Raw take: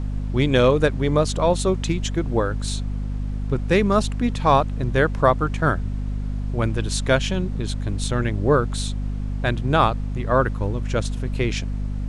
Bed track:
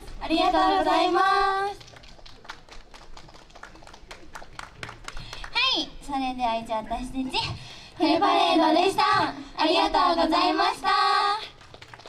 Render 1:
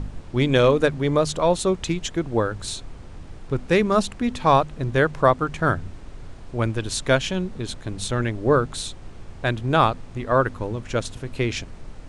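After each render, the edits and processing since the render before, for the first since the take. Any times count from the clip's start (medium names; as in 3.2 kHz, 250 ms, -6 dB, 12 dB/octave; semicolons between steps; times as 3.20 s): de-hum 50 Hz, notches 5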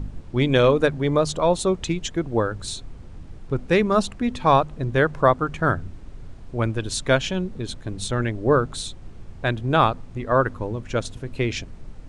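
noise reduction 6 dB, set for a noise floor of -40 dBFS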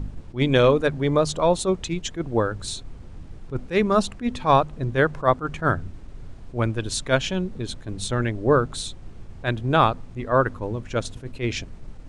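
attacks held to a fixed rise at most 260 dB/s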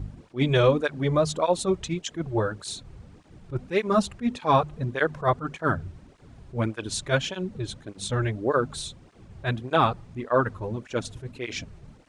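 cancelling through-zero flanger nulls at 1.7 Hz, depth 4.6 ms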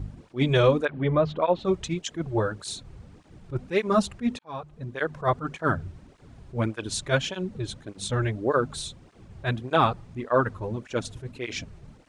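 0.85–1.65 s: low-pass 3.2 kHz 24 dB/octave; 4.39–5.41 s: fade in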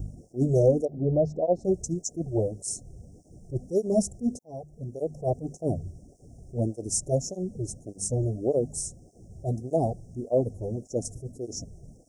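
Chebyshev band-stop 730–5500 Hz, order 5; treble shelf 5.8 kHz +9.5 dB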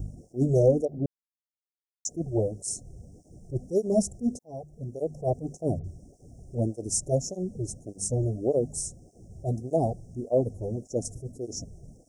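1.06–2.05 s: mute; 5.79–6.55 s: phase dispersion highs, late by 53 ms, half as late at 2.1 kHz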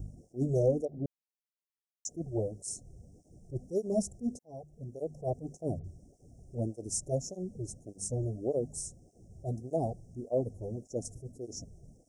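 trim -6.5 dB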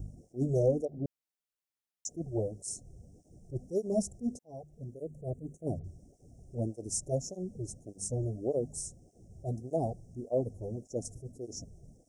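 4.94–5.67 s: static phaser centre 2.1 kHz, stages 4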